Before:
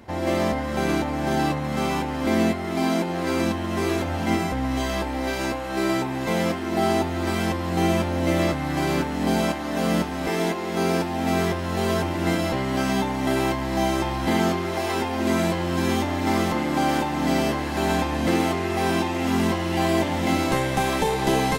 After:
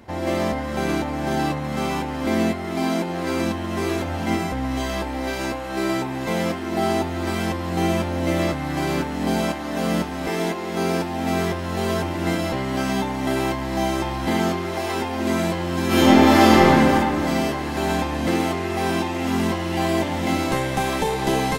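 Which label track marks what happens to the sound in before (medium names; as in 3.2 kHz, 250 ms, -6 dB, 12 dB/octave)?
15.870000	16.680000	reverb throw, RT60 2.5 s, DRR -11 dB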